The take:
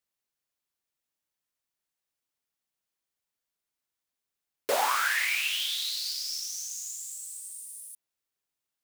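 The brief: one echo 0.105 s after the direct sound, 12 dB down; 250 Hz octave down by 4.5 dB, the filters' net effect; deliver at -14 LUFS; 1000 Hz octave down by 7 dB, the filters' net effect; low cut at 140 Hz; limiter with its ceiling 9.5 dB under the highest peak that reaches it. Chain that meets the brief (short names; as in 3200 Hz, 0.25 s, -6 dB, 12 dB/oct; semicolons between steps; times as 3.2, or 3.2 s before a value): HPF 140 Hz; bell 250 Hz -5.5 dB; bell 1000 Hz -9 dB; limiter -26.5 dBFS; echo 0.105 s -12 dB; gain +20.5 dB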